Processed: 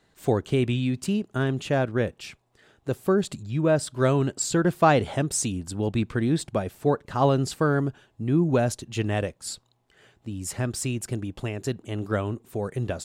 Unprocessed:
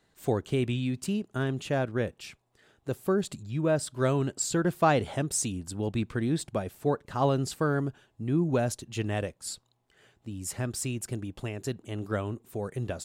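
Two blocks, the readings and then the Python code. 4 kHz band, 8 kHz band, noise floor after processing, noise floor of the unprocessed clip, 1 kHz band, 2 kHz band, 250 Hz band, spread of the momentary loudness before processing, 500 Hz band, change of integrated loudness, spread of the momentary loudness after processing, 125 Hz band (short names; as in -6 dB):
+4.0 dB, +2.5 dB, -67 dBFS, -71 dBFS, +4.5 dB, +4.5 dB, +4.5 dB, 10 LU, +4.5 dB, +4.5 dB, 10 LU, +4.5 dB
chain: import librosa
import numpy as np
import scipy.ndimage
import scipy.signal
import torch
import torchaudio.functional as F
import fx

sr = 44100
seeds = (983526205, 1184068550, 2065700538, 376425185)

y = fx.high_shelf(x, sr, hz=9400.0, db=-5.5)
y = y * librosa.db_to_amplitude(4.5)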